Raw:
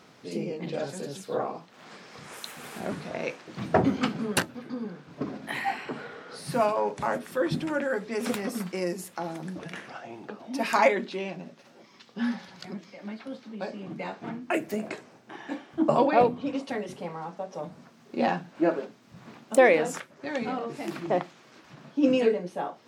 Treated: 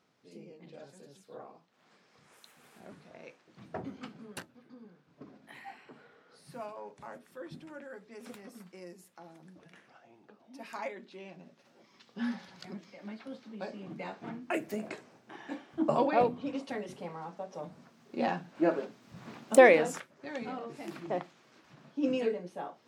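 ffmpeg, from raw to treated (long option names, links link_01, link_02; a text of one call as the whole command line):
ffmpeg -i in.wav -af "volume=1dB,afade=type=in:start_time=11:duration=1.27:silence=0.237137,afade=type=in:start_time=18.34:duration=1.19:silence=0.473151,afade=type=out:start_time=19.53:duration=0.58:silence=0.354813" out.wav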